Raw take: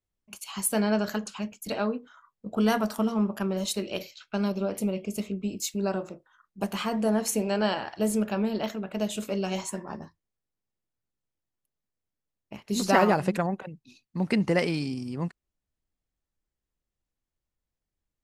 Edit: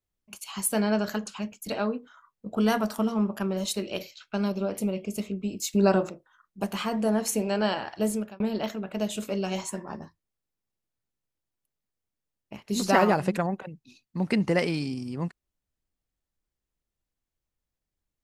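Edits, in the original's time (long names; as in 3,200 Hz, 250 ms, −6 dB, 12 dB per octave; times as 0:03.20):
0:05.73–0:06.10: clip gain +7.5 dB
0:08.06–0:08.40: fade out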